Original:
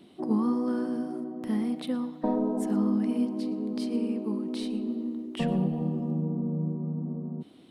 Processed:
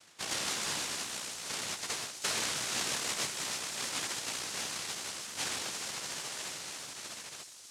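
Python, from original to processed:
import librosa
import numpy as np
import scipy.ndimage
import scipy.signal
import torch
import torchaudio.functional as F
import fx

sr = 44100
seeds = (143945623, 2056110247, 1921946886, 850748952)

p1 = scipy.signal.sosfilt(scipy.signal.butter(4, 280.0, 'highpass', fs=sr, output='sos'), x)
p2 = fx.high_shelf(p1, sr, hz=2500.0, db=10.5)
p3 = fx.noise_vocoder(p2, sr, seeds[0], bands=1)
p4 = p3 + fx.echo_wet_highpass(p3, sr, ms=320, feedback_pct=73, hz=5200.0, wet_db=-7.0, dry=0)
y = p4 * librosa.db_to_amplitude(-4.5)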